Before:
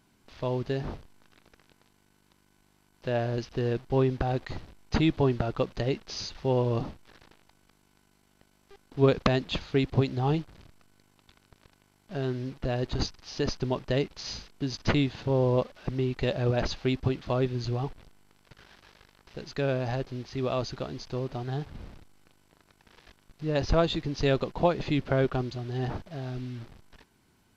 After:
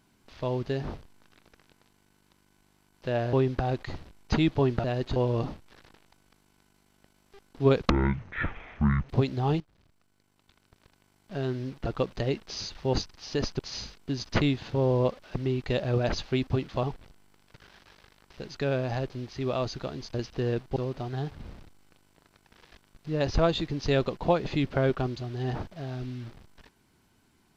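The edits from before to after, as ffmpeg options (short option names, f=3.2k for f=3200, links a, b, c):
-filter_complex "[0:a]asplit=13[a][b][c][d][e][f][g][h][i][j][k][l][m];[a]atrim=end=3.332[n];[b]atrim=start=3.948:end=5.462[o];[c]atrim=start=12.658:end=12.982[p];[d]atrim=start=6.528:end=9.274[q];[e]atrim=start=9.27:end=9.89,asetpts=PTS-STARTPTS,asetrate=22932,aresample=44100[r];[f]atrim=start=9.886:end=10.4,asetpts=PTS-STARTPTS,afade=t=out:st=0.51:d=0.004:c=hsin:silence=0.149624[s];[g]atrim=start=10.4:end=12.662,asetpts=PTS-STARTPTS,afade=t=in:d=1.73:silence=0.149624[t];[h]atrim=start=5.458:end=6.532[u];[i]atrim=start=12.978:end=13.642[v];[j]atrim=start=14.118:end=17.362[w];[k]atrim=start=17.798:end=21.112[x];[l]atrim=start=3.328:end=3.952[y];[m]atrim=start=21.108[z];[n][o]acrossfade=d=0.004:c1=hsin:c2=hsin[aa];[aa][p]acrossfade=d=0.004:c1=hsin:c2=hsin[ab];[ab][q]acrossfade=d=0.004:c1=hsin:c2=hsin[ac];[ac][r]acrossfade=d=0.004:c1=hsin:c2=hsin[ad];[s][t]concat=n=2:v=0:a=1[ae];[ad][ae]acrossfade=d=0.004:c1=hsin:c2=hsin[af];[af][u]acrossfade=d=0.004:c1=hsin:c2=hsin[ag];[ag][v]acrossfade=d=0.004:c1=hsin:c2=hsin[ah];[ah][w]acrossfade=d=0.004:c1=hsin:c2=hsin[ai];[ai][x]acrossfade=d=0.004:c1=hsin:c2=hsin[aj];[aj][y]acrossfade=d=0.004:c1=hsin:c2=hsin[ak];[ak][z]acrossfade=d=0.004:c1=hsin:c2=hsin"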